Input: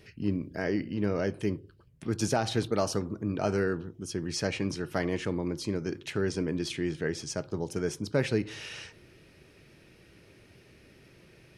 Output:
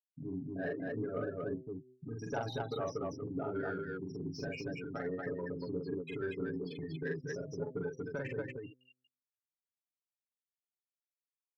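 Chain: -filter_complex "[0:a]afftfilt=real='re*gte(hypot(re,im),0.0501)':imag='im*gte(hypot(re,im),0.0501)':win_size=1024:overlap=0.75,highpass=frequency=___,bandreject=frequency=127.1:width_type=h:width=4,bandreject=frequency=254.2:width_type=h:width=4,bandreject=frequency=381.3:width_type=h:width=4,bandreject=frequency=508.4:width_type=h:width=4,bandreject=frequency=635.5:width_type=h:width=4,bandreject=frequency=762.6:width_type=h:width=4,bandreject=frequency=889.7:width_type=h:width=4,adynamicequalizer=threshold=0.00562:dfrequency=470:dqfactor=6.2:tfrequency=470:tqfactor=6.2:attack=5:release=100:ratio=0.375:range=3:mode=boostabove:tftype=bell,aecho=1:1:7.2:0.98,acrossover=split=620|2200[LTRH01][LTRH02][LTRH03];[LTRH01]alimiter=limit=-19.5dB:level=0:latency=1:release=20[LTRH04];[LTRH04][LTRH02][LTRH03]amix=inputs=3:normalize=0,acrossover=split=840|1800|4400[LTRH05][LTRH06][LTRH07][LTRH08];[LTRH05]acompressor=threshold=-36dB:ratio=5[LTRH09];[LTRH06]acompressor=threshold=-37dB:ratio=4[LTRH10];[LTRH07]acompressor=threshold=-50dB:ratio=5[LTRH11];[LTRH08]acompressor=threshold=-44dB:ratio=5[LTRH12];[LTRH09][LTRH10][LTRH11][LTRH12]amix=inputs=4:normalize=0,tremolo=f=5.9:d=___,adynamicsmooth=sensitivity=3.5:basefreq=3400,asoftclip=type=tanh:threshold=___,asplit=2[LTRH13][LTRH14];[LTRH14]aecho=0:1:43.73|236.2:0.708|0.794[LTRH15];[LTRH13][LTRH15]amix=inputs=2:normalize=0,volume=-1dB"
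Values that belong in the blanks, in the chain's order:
91, 0.56, -26.5dB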